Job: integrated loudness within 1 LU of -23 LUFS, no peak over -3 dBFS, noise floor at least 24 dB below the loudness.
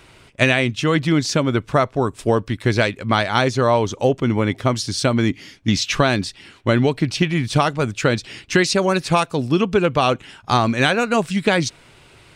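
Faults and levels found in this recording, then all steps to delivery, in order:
loudness -19.0 LUFS; peak -2.0 dBFS; loudness target -23.0 LUFS
-> gain -4 dB

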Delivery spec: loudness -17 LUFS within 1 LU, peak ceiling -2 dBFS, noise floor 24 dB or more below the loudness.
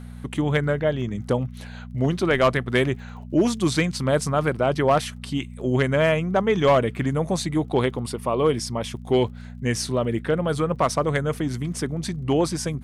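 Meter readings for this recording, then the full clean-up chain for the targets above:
ticks 31/s; hum 60 Hz; harmonics up to 240 Hz; hum level -35 dBFS; loudness -23.5 LUFS; peak -10.5 dBFS; loudness target -17.0 LUFS
-> de-click; de-hum 60 Hz, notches 4; gain +6.5 dB

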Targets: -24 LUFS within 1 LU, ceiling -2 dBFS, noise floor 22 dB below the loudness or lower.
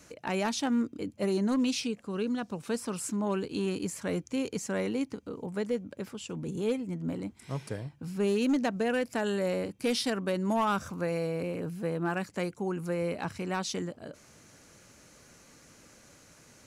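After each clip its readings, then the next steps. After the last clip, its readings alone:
clipped 0.6%; flat tops at -22.0 dBFS; loudness -32.0 LUFS; peak -22.0 dBFS; loudness target -24.0 LUFS
-> clip repair -22 dBFS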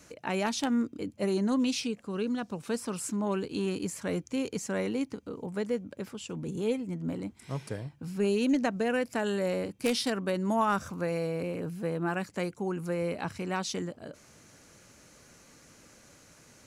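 clipped 0.0%; loudness -32.0 LUFS; peak -13.0 dBFS; loudness target -24.0 LUFS
-> gain +8 dB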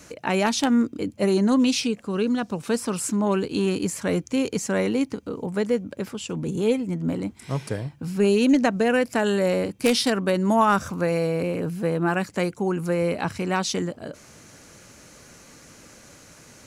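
loudness -24.0 LUFS; peak -5.0 dBFS; noise floor -50 dBFS

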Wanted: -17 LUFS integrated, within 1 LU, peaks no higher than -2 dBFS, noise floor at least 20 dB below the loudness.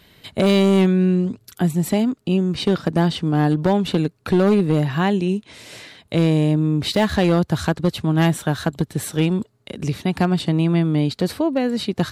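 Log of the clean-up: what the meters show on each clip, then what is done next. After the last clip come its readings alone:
clipped 1.3%; flat tops at -10.5 dBFS; loudness -20.0 LUFS; peak -10.5 dBFS; loudness target -17.0 LUFS
-> clip repair -10.5 dBFS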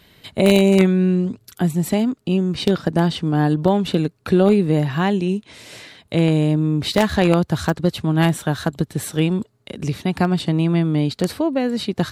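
clipped 0.0%; loudness -19.0 LUFS; peak -1.5 dBFS; loudness target -17.0 LUFS
-> gain +2 dB; limiter -2 dBFS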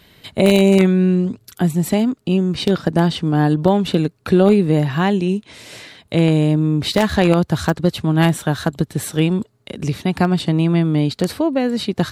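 loudness -17.5 LUFS; peak -2.0 dBFS; noise floor -56 dBFS

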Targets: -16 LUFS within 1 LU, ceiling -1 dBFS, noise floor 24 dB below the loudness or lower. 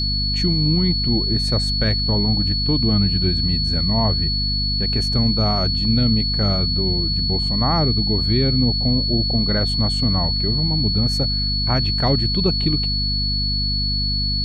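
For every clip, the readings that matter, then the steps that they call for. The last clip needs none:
hum 50 Hz; harmonics up to 250 Hz; hum level -21 dBFS; steady tone 4400 Hz; tone level -21 dBFS; loudness -18.5 LUFS; peak -5.5 dBFS; loudness target -16.0 LUFS
-> de-hum 50 Hz, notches 5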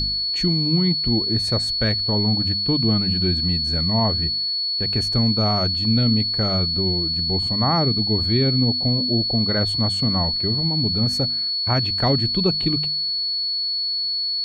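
hum none; steady tone 4400 Hz; tone level -21 dBFS
-> notch 4400 Hz, Q 30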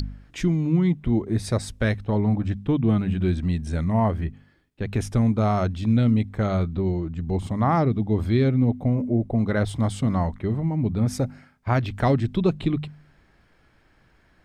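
steady tone none; loudness -23.5 LUFS; peak -9.0 dBFS; loudness target -16.0 LUFS
-> gain +7.5 dB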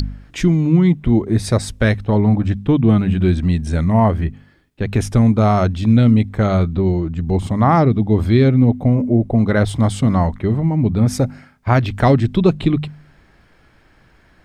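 loudness -16.0 LUFS; peak -1.5 dBFS; noise floor -53 dBFS

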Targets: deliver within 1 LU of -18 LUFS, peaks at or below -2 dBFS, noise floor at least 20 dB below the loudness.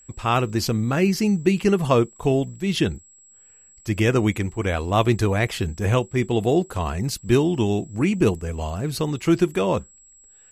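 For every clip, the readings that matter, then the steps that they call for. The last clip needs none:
steady tone 7700 Hz; tone level -49 dBFS; loudness -22.0 LUFS; peak -4.5 dBFS; loudness target -18.0 LUFS
-> notch 7700 Hz, Q 30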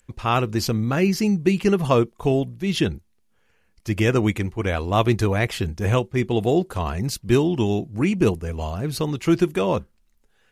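steady tone none; loudness -22.0 LUFS; peak -4.5 dBFS; loudness target -18.0 LUFS
-> gain +4 dB; limiter -2 dBFS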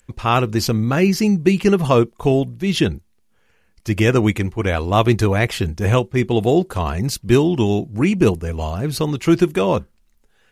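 loudness -18.0 LUFS; peak -2.0 dBFS; noise floor -60 dBFS

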